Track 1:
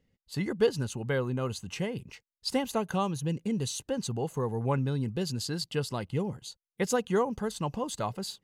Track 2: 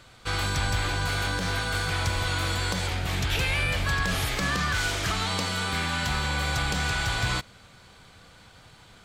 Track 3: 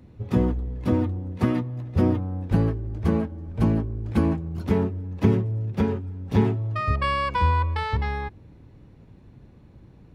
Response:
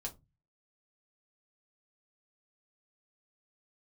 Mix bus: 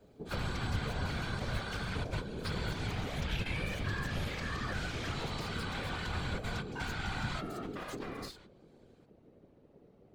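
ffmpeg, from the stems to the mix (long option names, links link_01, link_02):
-filter_complex "[0:a]aeval=exprs='max(val(0),0)':channel_layout=same,crystalizer=i=7.5:c=0,volume=-4dB,asplit=3[link_01][link_02][link_03];[link_02]volume=-18.5dB[link_04];[1:a]volume=-2dB,asplit=2[link_05][link_06];[link_06]volume=-13dB[link_07];[2:a]volume=-3dB[link_08];[link_03]apad=whole_len=398983[link_09];[link_05][link_09]sidechaingate=range=-43dB:threshold=-46dB:ratio=16:detection=peak[link_10];[link_01][link_08]amix=inputs=2:normalize=0,aeval=exprs='val(0)*sin(2*PI*310*n/s)':channel_layout=same,acompressor=threshold=-29dB:ratio=4,volume=0dB[link_11];[3:a]atrim=start_sample=2205[link_12];[link_04][link_07]amix=inputs=2:normalize=0[link_13];[link_13][link_12]afir=irnorm=-1:irlink=0[link_14];[link_10][link_11][link_14]amix=inputs=3:normalize=0,acrossover=split=110|5300[link_15][link_16][link_17];[link_16]acompressor=threshold=-31dB:ratio=4[link_18];[link_17]acompressor=threshold=-56dB:ratio=4[link_19];[link_15][link_18][link_19]amix=inputs=3:normalize=0,afftfilt=real='hypot(re,im)*cos(2*PI*random(0))':imag='hypot(re,im)*sin(2*PI*random(1))':win_size=512:overlap=0.75"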